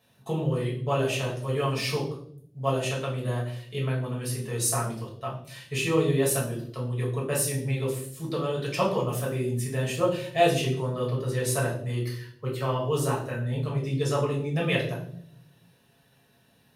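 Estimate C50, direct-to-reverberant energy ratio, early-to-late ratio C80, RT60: 6.5 dB, -5.0 dB, 10.0 dB, 0.65 s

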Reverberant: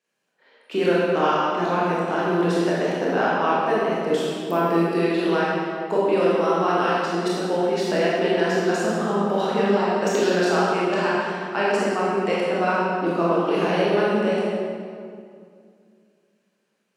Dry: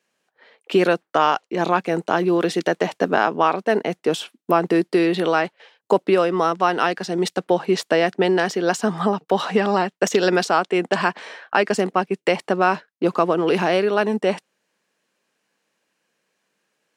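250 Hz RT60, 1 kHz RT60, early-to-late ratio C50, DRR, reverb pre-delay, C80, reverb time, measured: 2.8 s, 2.2 s, -3.0 dB, -7.5 dB, 21 ms, -1.0 dB, 2.3 s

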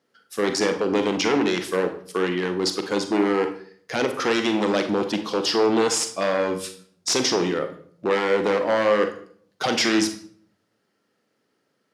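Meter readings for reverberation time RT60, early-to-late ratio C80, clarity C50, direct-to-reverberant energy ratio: 0.55 s, 14.0 dB, 10.0 dB, 7.0 dB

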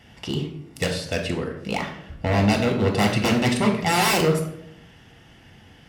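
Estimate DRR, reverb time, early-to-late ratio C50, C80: 2.5 dB, 0.75 s, 7.5 dB, 10.5 dB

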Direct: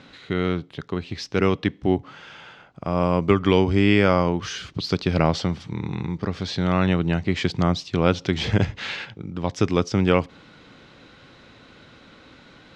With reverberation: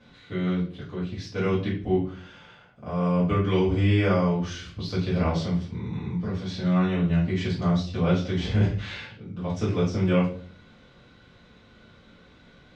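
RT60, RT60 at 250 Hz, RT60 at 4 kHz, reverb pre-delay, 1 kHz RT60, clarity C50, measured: 0.45 s, 0.65 s, 0.35 s, 4 ms, 0.40 s, 5.5 dB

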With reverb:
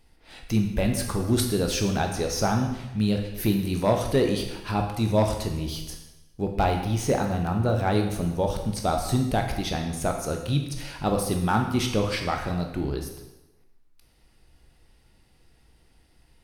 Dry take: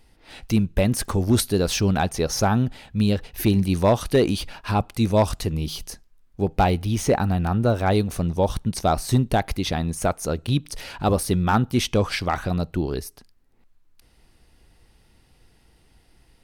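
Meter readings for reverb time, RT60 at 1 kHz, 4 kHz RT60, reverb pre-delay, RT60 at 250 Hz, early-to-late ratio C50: 1.0 s, 1.0 s, 0.95 s, 6 ms, 0.95 s, 6.0 dB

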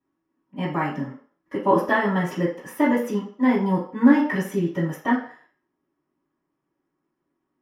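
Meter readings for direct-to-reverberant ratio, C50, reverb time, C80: -10.5 dB, 6.5 dB, 0.50 s, 11.0 dB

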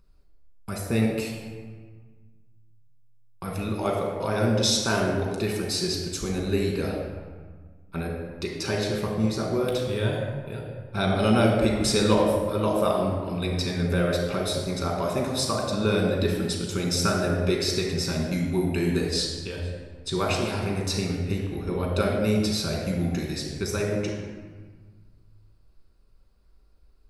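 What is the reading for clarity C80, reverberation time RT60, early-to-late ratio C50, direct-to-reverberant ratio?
4.0 dB, 1.6 s, 2.0 dB, -1.0 dB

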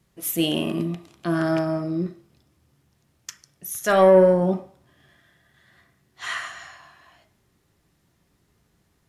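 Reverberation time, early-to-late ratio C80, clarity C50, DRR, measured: 0.50 s, 17.5 dB, 13.0 dB, 5.0 dB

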